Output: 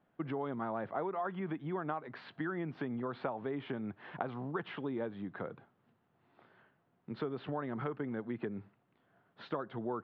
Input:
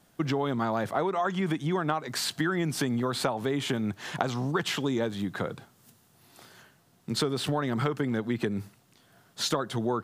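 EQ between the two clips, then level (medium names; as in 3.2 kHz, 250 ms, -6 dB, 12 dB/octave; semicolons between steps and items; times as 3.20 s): Gaussian low-pass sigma 2.1 samples; distance through air 460 m; bass shelf 150 Hz -11 dB; -6.0 dB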